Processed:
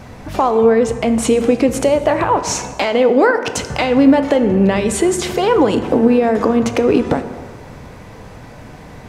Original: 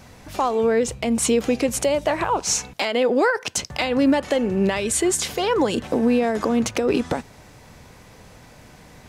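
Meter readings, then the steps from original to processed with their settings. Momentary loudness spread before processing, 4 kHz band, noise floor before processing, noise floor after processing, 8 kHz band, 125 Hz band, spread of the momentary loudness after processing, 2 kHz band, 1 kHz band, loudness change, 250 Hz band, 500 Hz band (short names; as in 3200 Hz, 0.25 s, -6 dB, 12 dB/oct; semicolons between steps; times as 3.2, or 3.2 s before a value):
5 LU, +1.5 dB, -47 dBFS, -37 dBFS, -0.5 dB, +8.5 dB, 8 LU, +4.5 dB, +7.0 dB, +6.5 dB, +7.5 dB, +7.5 dB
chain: high shelf 2700 Hz -11 dB; in parallel at -0.5 dB: compressor, threshold -29 dBFS, peak gain reduction 14 dB; on the sum: short-mantissa float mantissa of 8-bit; plate-style reverb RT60 1.8 s, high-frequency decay 0.55×, DRR 9 dB; gain +5 dB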